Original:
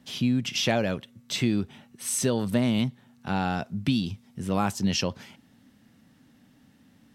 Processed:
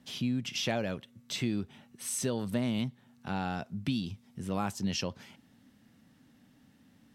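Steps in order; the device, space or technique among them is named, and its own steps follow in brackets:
parallel compression (in parallel at −3.5 dB: downward compressor, threshold −37 dBFS, peak gain reduction 16.5 dB)
on the sum: level −8 dB

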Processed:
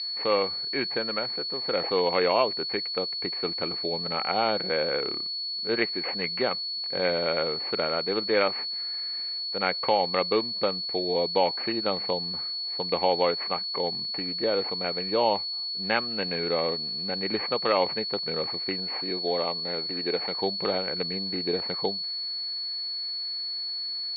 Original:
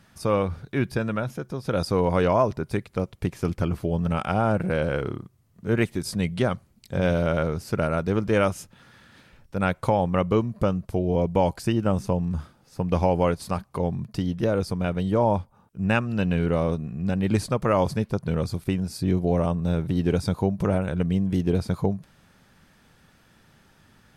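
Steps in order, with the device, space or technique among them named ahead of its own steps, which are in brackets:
toy sound module (linearly interpolated sample-rate reduction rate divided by 8×; switching amplifier with a slow clock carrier 4,400 Hz; loudspeaker in its box 580–3,900 Hz, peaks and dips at 630 Hz −7 dB, 990 Hz −6 dB, 1,400 Hz −6 dB, 2,200 Hz +9 dB)
0:18.95–0:20.37: high-pass filter 250 Hz 6 dB per octave
level +6 dB

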